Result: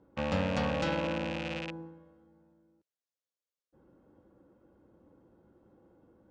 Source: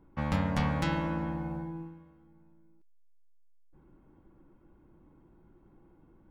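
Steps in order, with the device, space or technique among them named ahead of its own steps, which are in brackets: car door speaker with a rattle (rattling part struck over -38 dBFS, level -24 dBFS; speaker cabinet 90–7300 Hz, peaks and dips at 150 Hz -8 dB, 350 Hz -3 dB, 520 Hz +10 dB, 1000 Hz -4 dB, 2300 Hz -8 dB)

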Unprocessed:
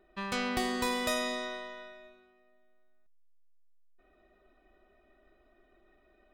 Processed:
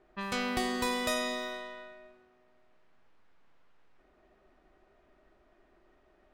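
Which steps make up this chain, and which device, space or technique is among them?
cassette deck with a dynamic noise filter (white noise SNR 23 dB; low-pass opened by the level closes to 1300 Hz, open at -33 dBFS)

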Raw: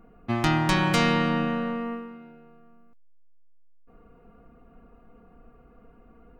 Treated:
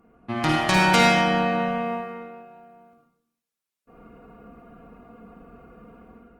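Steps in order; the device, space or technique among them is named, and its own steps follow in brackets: far-field microphone of a smart speaker (reverb RT60 0.70 s, pre-delay 44 ms, DRR 0 dB; HPF 140 Hz 6 dB/oct; AGC gain up to 8 dB; gain -2 dB; Opus 32 kbps 48000 Hz)

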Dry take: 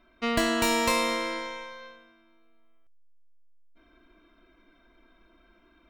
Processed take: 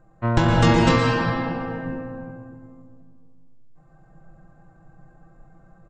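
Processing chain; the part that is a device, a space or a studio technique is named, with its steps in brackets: monster voice (pitch shift -12 st; formant shift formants -2.5 st; low shelf 110 Hz +6.5 dB; reverb RT60 2.1 s, pre-delay 0.113 s, DRR 0 dB); 0.98–1.86 low shelf 440 Hz -5.5 dB; gain +4.5 dB

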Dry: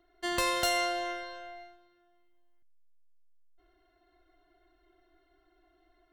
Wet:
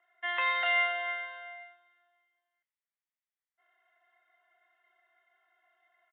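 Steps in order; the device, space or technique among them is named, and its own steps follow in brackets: musical greeting card (downsampling 8000 Hz; HPF 710 Hz 24 dB/oct; bell 2000 Hz +9 dB 0.41 oct); bands offset in time lows, highs 30 ms, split 3100 Hz

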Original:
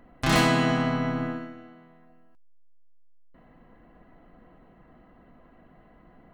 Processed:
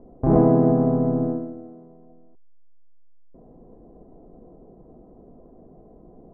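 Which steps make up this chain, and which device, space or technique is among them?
under water (LPF 740 Hz 24 dB/oct; bell 410 Hz +9.5 dB 0.46 oct); gain +5.5 dB

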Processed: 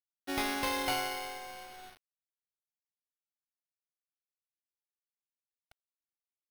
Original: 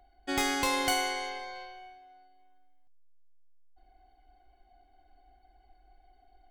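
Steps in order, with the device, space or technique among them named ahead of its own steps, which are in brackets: early 8-bit sampler (sample-rate reducer 7300 Hz, jitter 0%; bit-crush 8-bit); gain -4 dB

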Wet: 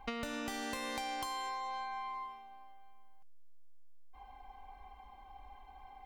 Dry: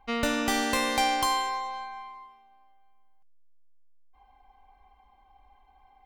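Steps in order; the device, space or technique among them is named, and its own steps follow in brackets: serial compression, leveller first (compressor, threshold -31 dBFS, peak gain reduction 9.5 dB; compressor 6:1, threshold -43 dBFS, peak gain reduction 12.5 dB); gain +5.5 dB

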